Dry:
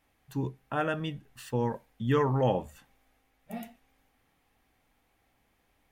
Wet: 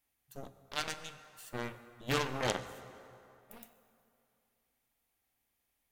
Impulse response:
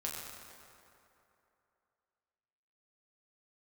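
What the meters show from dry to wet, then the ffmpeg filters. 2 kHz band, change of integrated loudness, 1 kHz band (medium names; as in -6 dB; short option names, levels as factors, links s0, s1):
-0.5 dB, -7.0 dB, -7.0 dB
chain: -filter_complex "[0:a]aeval=exprs='0.2*(cos(1*acos(clip(val(0)/0.2,-1,1)))-cos(1*PI/2))+0.0355*(cos(3*acos(clip(val(0)/0.2,-1,1)))-cos(3*PI/2))+0.0316*(cos(6*acos(clip(val(0)/0.2,-1,1)))-cos(6*PI/2))+0.02*(cos(7*acos(clip(val(0)/0.2,-1,1)))-cos(7*PI/2))+0.0282*(cos(8*acos(clip(val(0)/0.2,-1,1)))-cos(8*PI/2))':c=same,asplit=2[s0][s1];[1:a]atrim=start_sample=2205[s2];[s1][s2]afir=irnorm=-1:irlink=0,volume=0.376[s3];[s0][s3]amix=inputs=2:normalize=0,crystalizer=i=4:c=0,volume=0.473"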